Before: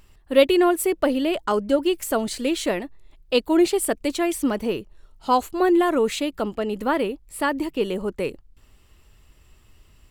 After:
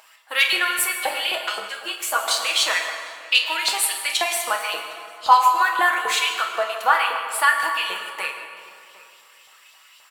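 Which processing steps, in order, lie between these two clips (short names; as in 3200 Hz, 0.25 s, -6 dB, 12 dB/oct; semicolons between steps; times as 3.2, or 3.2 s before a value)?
HPF 130 Hz; bell 300 Hz -10.5 dB 2 oct; comb 6.2 ms, depth 44%; in parallel at +1 dB: compressor, threshold -34 dBFS, peak gain reduction 16.5 dB; on the sum: hard clip -11.5 dBFS, distortion -30 dB; LFO high-pass saw up 3.8 Hz 710–3900 Hz; outdoor echo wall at 130 m, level -18 dB; on a send at -1.5 dB: reverb RT60 2.3 s, pre-delay 7 ms; 1.69–2.28 on the sum: ensemble effect; gain +1.5 dB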